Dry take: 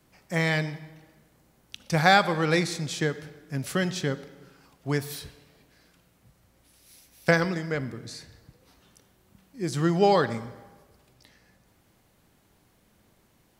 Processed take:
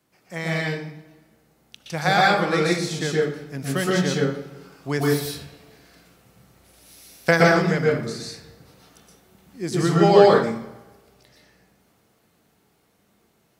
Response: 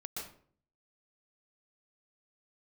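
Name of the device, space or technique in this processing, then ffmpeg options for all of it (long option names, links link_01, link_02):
far laptop microphone: -filter_complex "[1:a]atrim=start_sample=2205[link_01];[0:a][link_01]afir=irnorm=-1:irlink=0,highpass=frequency=160:poles=1,dynaudnorm=framelen=300:gausssize=21:maxgain=11.5dB,volume=1.5dB"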